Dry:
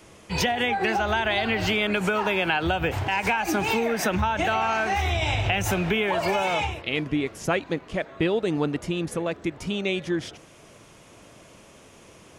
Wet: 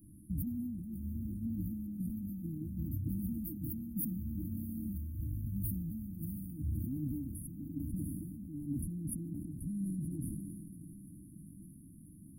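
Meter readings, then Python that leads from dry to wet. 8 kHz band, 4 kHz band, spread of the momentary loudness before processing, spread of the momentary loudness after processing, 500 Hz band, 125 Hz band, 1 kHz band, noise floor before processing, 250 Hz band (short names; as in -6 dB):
-13.0 dB, under -40 dB, 6 LU, 14 LU, under -30 dB, -7.0 dB, under -40 dB, -51 dBFS, -9.0 dB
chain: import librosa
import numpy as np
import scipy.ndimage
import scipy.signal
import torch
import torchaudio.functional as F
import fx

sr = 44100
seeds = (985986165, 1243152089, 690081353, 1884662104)

y = fx.curve_eq(x, sr, hz=(550.0, 3000.0, 14000.0), db=(0, -29, 5))
y = fx.over_compress(y, sr, threshold_db=-30.0, ratio=-0.5)
y = fx.brickwall_bandstop(y, sr, low_hz=320.0, high_hz=9200.0)
y = fx.echo_diffused(y, sr, ms=694, feedback_pct=63, wet_db=-13.0)
y = fx.sustainer(y, sr, db_per_s=25.0)
y = y * 10.0 ** (-5.5 / 20.0)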